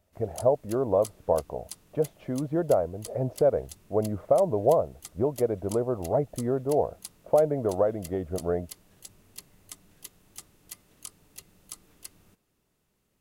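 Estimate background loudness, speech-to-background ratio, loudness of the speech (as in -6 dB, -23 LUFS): -46.5 LUFS, 19.0 dB, -27.5 LUFS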